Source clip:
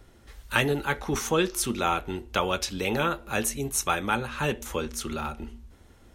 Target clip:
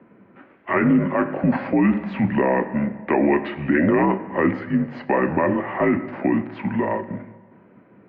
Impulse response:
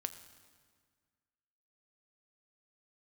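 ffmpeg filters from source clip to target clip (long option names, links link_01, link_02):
-filter_complex "[0:a]asetrate=33516,aresample=44100,asplit=2[link_01][link_02];[link_02]acrusher=bits=5:mix=0:aa=0.5,volume=-9dB[link_03];[link_01][link_03]amix=inputs=2:normalize=0,equalizer=frequency=1200:width=0.67:gain=-14,asplit=2[link_04][link_05];[1:a]atrim=start_sample=2205,lowshelf=frequency=430:gain=-6[link_06];[link_05][link_06]afir=irnorm=-1:irlink=0,volume=6.5dB[link_07];[link_04][link_07]amix=inputs=2:normalize=0,highpass=frequency=270:width_type=q:width=0.5412,highpass=frequency=270:width_type=q:width=1.307,lowpass=frequency=2000:width_type=q:width=0.5176,lowpass=frequency=2000:width_type=q:width=0.7071,lowpass=frequency=2000:width_type=q:width=1.932,afreqshift=-67,alimiter=level_in=17.5dB:limit=-1dB:release=50:level=0:latency=1,volume=-8.5dB"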